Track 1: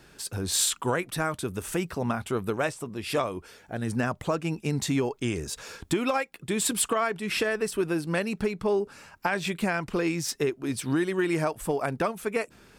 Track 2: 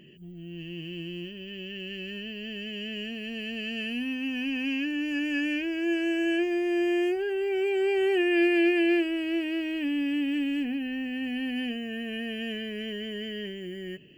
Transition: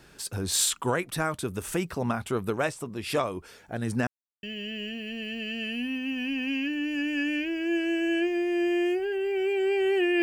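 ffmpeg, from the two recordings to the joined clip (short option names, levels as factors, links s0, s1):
-filter_complex "[0:a]apad=whole_dur=10.22,atrim=end=10.22,asplit=2[s0][s1];[s0]atrim=end=4.07,asetpts=PTS-STARTPTS,afade=t=out:st=4.066:d=0.004:c=hsin[s2];[s1]atrim=start=4.07:end=4.43,asetpts=PTS-STARTPTS,volume=0[s3];[1:a]atrim=start=2.6:end=8.39,asetpts=PTS-STARTPTS,afade=t=in:d=0.004:c=hsin[s4];[s2][s3][s4]concat=n=3:v=0:a=1"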